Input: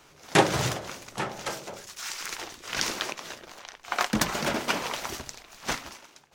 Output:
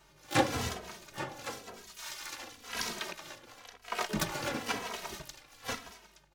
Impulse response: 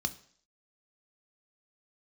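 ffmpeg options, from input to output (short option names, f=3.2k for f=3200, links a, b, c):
-filter_complex "[0:a]asplit=3[a][b][c];[b]asetrate=29433,aresample=44100,atempo=1.49831,volume=-5dB[d];[c]asetrate=88200,aresample=44100,atempo=0.5,volume=-9dB[e];[a][d][e]amix=inputs=3:normalize=0,aeval=exprs='val(0)+0.000794*(sin(2*PI*50*n/s)+sin(2*PI*2*50*n/s)/2+sin(2*PI*3*50*n/s)/3+sin(2*PI*4*50*n/s)/4+sin(2*PI*5*50*n/s)/5)':c=same,asplit=2[f][g];[g]adelay=2.8,afreqshift=-0.97[h];[f][h]amix=inputs=2:normalize=1,volume=-5.5dB"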